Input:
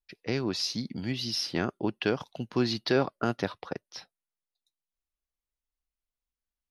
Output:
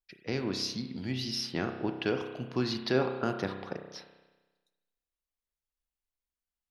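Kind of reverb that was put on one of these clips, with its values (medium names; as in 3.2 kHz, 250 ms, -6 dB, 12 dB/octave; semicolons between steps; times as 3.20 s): spring tank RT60 1.2 s, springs 31 ms, chirp 65 ms, DRR 5.5 dB; trim -3.5 dB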